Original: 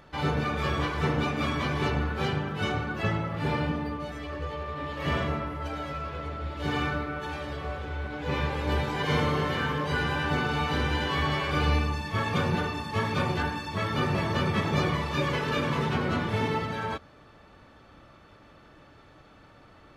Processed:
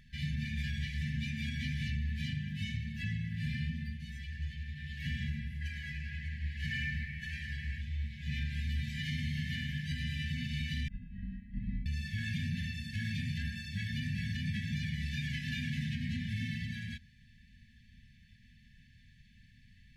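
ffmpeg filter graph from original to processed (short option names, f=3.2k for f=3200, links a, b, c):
-filter_complex "[0:a]asettb=1/sr,asplit=3[a][b][c];[a]atrim=end=5.614[d];[b]atrim=start=5.61:end=7.81,asetpts=PTS-STARTPTS,afade=t=in:d=0.004:c=qsin,afade=t=out:st=2.196:d=0.004:c=qsin,equalizer=f=1.5k:t=o:w=1.4:g=9.5,bandreject=f=3.6k:w=11[e];[c]atrim=start=7.806[f];[d][e]acrossfade=d=0.004:c1=hsin:c2=qsin[g];[g][f]acrossfade=d=0.004:c1=qsin:c2=hsin,asettb=1/sr,asplit=3[h][i][j];[h]atrim=end=10.884[k];[i]atrim=start=10.88:end=11.86,asetpts=PTS-STARTPTS,afade=t=in:d=0.004:c=qsin,afade=t=out:st=0.976:d=0.004:c=qsin,agate=range=-33dB:threshold=-21dB:ratio=3:release=100:detection=peak,lowpass=1k,afreqshift=-340[l];[j]atrim=start=11.856[m];[k][l]acrossfade=d=0.004:c1=hsin:c2=qsin[n];[n][m]acrossfade=d=0.004:c1=qsin:c2=hsin,afftfilt=real='re*(1-between(b*sr/4096,250,1600))':imag='im*(1-between(b*sr/4096,250,1600))':win_size=4096:overlap=0.75,lowshelf=f=66:g=9.5,alimiter=limit=-21.5dB:level=0:latency=1:release=93,volume=-5.5dB"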